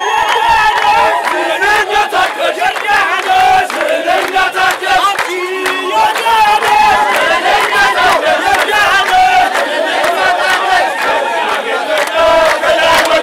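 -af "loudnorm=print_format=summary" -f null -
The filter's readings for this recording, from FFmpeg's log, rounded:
Input Integrated:    -10.3 LUFS
Input True Peak:      -2.8 dBTP
Input LRA:             1.5 LU
Input Threshold:     -20.3 LUFS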